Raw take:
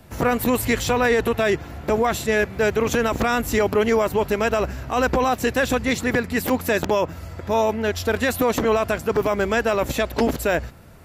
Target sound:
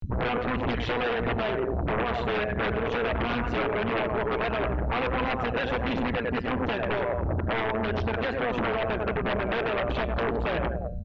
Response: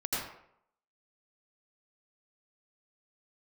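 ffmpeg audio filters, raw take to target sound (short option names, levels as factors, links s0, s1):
-filter_complex "[0:a]asplit=2[s0][s1];[s1]adelay=95,lowpass=f=2400:p=1,volume=0.355,asplit=2[s2][s3];[s3]adelay=95,lowpass=f=2400:p=1,volume=0.43,asplit=2[s4][s5];[s5]adelay=95,lowpass=f=2400:p=1,volume=0.43,asplit=2[s6][s7];[s7]adelay=95,lowpass=f=2400:p=1,volume=0.43,asplit=2[s8][s9];[s9]adelay=95,lowpass=f=2400:p=1,volume=0.43[s10];[s2][s4][s6][s8][s10]amix=inputs=5:normalize=0[s11];[s0][s11]amix=inputs=2:normalize=0,afftfilt=real='re*gte(hypot(re,im),0.0355)':imag='im*gte(hypot(re,im),0.0355)':win_size=1024:overlap=0.75,adynamicequalizer=threshold=0.0178:dfrequency=590:dqfactor=6.5:tfrequency=590:tqfactor=6.5:attack=5:release=100:ratio=0.375:range=2:mode=boostabove:tftype=bell,acompressor=threshold=0.0316:ratio=4,aphaser=in_gain=1:out_gain=1:delay=2.7:decay=0.49:speed=1.5:type=triangular,acompressor=mode=upward:threshold=0.0224:ratio=2.5,equalizer=f=2000:t=o:w=0.37:g=-5.5,bandreject=f=198.4:t=h:w=4,bandreject=f=396.8:t=h:w=4,bandreject=f=595.2:t=h:w=4,bandreject=f=793.6:t=h:w=4,bandreject=f=992:t=h:w=4,bandreject=f=1190.4:t=h:w=4,bandreject=f=1388.8:t=h:w=4,bandreject=f=1587.2:t=h:w=4,bandreject=f=1785.6:t=h:w=4,bandreject=f=1984:t=h:w=4,bandreject=f=2182.4:t=h:w=4,bandreject=f=2380.8:t=h:w=4,bandreject=f=2579.2:t=h:w=4,bandreject=f=2777.6:t=h:w=4,bandreject=f=2976:t=h:w=4,bandreject=f=3174.4:t=h:w=4,bandreject=f=3372.8:t=h:w=4,bandreject=f=3571.2:t=h:w=4,bandreject=f=3769.6:t=h:w=4,bandreject=f=3968:t=h:w=4,bandreject=f=4166.4:t=h:w=4,bandreject=f=4364.8:t=h:w=4,bandreject=f=4563.2:t=h:w=4,bandreject=f=4761.6:t=h:w=4,bandreject=f=4960:t=h:w=4,bandreject=f=5158.4:t=h:w=4,bandreject=f=5356.8:t=h:w=4,bandreject=f=5555.2:t=h:w=4,bandreject=f=5753.6:t=h:w=4,bandreject=f=5952:t=h:w=4,bandreject=f=6150.4:t=h:w=4,bandreject=f=6348.8:t=h:w=4,bandreject=f=6547.2:t=h:w=4,tremolo=f=120:d=0.857,aeval=exprs='0.133*sin(PI/2*5.62*val(0)/0.133)':c=same,lowpass=f=3200:w=0.5412,lowpass=f=3200:w=1.3066,volume=0.562" -ar 16000 -c:a mp2 -b:a 128k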